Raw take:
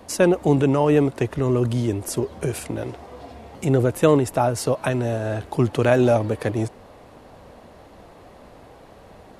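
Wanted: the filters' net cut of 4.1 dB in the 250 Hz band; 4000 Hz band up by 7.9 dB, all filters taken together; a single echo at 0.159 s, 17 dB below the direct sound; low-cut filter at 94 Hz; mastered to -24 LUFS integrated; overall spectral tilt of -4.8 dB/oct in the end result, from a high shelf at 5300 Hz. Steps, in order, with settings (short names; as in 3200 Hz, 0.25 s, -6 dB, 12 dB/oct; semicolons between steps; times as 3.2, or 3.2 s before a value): HPF 94 Hz; bell 250 Hz -5.5 dB; bell 4000 Hz +8 dB; high shelf 5300 Hz +5.5 dB; echo 0.159 s -17 dB; gain -1.5 dB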